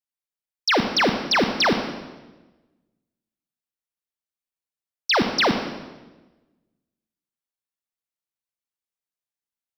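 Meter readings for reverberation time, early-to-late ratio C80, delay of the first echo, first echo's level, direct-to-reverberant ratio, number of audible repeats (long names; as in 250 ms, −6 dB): 1.2 s, 9.0 dB, no echo audible, no echo audible, 6.0 dB, no echo audible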